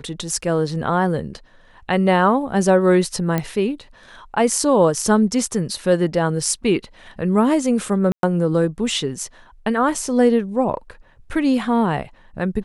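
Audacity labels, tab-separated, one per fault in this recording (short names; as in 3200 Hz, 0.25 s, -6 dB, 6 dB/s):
3.380000	3.380000	pop -8 dBFS
8.120000	8.230000	gap 0.112 s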